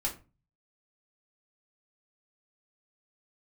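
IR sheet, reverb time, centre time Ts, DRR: 0.30 s, 16 ms, −3.0 dB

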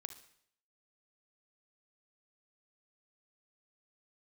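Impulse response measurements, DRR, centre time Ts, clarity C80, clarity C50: 9.0 dB, 10 ms, 14.5 dB, 10.0 dB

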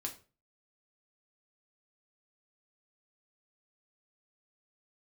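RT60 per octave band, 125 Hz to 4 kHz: 0.50, 0.40, 0.40, 0.35, 0.30, 0.30 seconds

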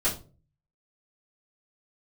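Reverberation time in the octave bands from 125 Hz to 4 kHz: 0.70, 0.50, 0.45, 0.30, 0.25, 0.25 seconds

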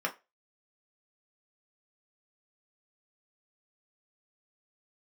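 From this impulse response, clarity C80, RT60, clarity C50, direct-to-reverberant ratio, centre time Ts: 24.0 dB, 0.25 s, 16.0 dB, 0.5 dB, 10 ms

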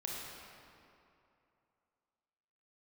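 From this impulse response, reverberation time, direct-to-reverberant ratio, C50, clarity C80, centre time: 2.7 s, −3.5 dB, −2.0 dB, 0.0 dB, 144 ms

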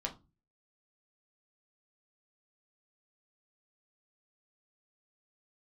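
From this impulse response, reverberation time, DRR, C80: 0.25 s, 0.0 dB, 22.0 dB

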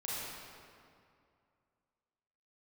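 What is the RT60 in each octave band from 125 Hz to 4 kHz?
2.7, 2.5, 2.4, 2.4, 2.0, 1.5 seconds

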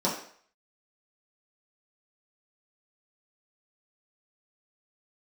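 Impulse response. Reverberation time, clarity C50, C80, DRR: 0.55 s, 6.0 dB, 9.5 dB, −7.5 dB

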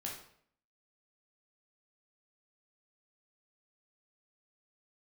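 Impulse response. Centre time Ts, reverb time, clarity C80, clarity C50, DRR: 34 ms, 0.60 s, 8.5 dB, 4.5 dB, −2.5 dB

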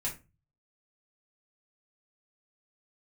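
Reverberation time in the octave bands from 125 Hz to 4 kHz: 0.65, 0.40, 0.30, 0.25, 0.25, 0.20 seconds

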